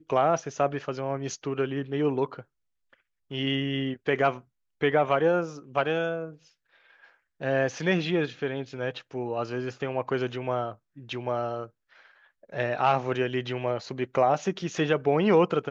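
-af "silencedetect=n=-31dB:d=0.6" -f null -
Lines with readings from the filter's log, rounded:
silence_start: 2.40
silence_end: 3.31 | silence_duration: 0.92
silence_start: 6.27
silence_end: 7.42 | silence_duration: 1.15
silence_start: 11.64
silence_end: 12.54 | silence_duration: 0.90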